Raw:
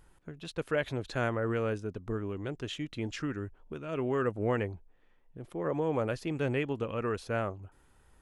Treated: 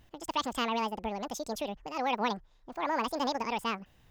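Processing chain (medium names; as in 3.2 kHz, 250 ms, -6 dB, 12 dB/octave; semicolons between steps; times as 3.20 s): speed mistake 7.5 ips tape played at 15 ips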